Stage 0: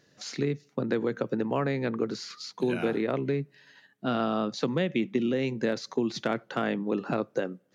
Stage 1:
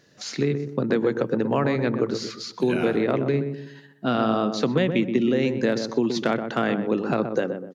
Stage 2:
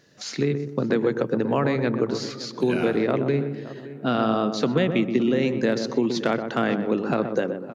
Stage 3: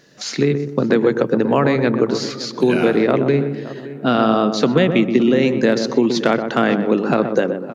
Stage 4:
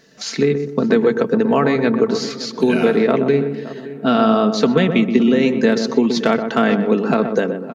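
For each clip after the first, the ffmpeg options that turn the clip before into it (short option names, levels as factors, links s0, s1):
-filter_complex "[0:a]asplit=2[s0][s1];[s1]adelay=125,lowpass=f=940:p=1,volume=0.501,asplit=2[s2][s3];[s3]adelay=125,lowpass=f=940:p=1,volume=0.41,asplit=2[s4][s5];[s5]adelay=125,lowpass=f=940:p=1,volume=0.41,asplit=2[s6][s7];[s7]adelay=125,lowpass=f=940:p=1,volume=0.41,asplit=2[s8][s9];[s9]adelay=125,lowpass=f=940:p=1,volume=0.41[s10];[s0][s2][s4][s6][s8][s10]amix=inputs=6:normalize=0,volume=1.78"
-filter_complex "[0:a]asplit=2[s0][s1];[s1]adelay=568,lowpass=f=1800:p=1,volume=0.168,asplit=2[s2][s3];[s3]adelay=568,lowpass=f=1800:p=1,volume=0.31,asplit=2[s4][s5];[s5]adelay=568,lowpass=f=1800:p=1,volume=0.31[s6];[s0][s2][s4][s6]amix=inputs=4:normalize=0"
-af "equalizer=f=94:w=3.4:g=-11.5,volume=2.24"
-af "aecho=1:1:4.5:0.5,volume=0.891"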